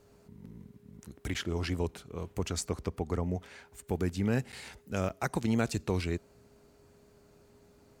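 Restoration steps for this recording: band-stop 410 Hz, Q 30; interpolate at 1.34/4.52/5.09 s, 8.1 ms

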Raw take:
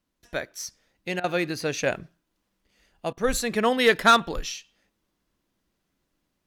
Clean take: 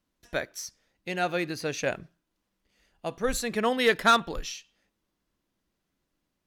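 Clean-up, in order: interpolate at 1.20/3.13 s, 39 ms; gain correction -3.5 dB, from 0.60 s

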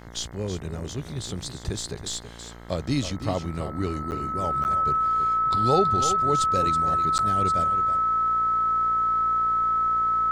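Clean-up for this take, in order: de-hum 58.1 Hz, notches 37; band-stop 1.3 kHz, Q 30; interpolate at 4.11/4.64/7.18 s, 9.6 ms; inverse comb 325 ms -10.5 dB

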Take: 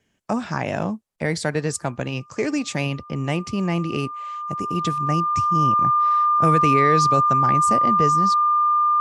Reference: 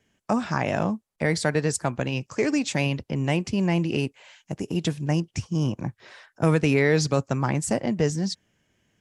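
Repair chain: band-stop 1.2 kHz, Q 30

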